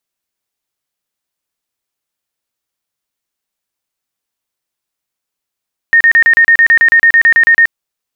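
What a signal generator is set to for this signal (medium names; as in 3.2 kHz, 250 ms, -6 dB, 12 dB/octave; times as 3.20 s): tone bursts 1.84 kHz, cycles 139, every 0.11 s, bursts 16, -3.5 dBFS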